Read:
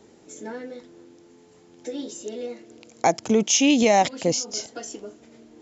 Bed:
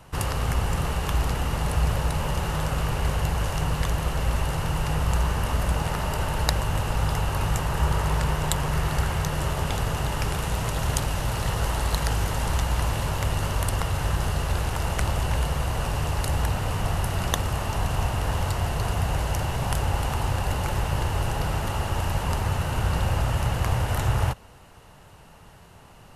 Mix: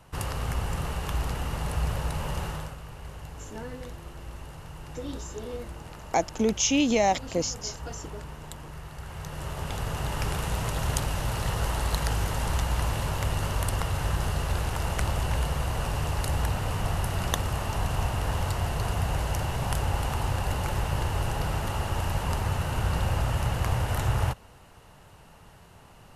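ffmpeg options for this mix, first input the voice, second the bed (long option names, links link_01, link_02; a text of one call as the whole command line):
ffmpeg -i stem1.wav -i stem2.wav -filter_complex "[0:a]adelay=3100,volume=-5dB[link_01];[1:a]volume=9dB,afade=type=out:start_time=2.43:duration=0.34:silence=0.266073,afade=type=in:start_time=8.99:duration=1.3:silence=0.199526[link_02];[link_01][link_02]amix=inputs=2:normalize=0" out.wav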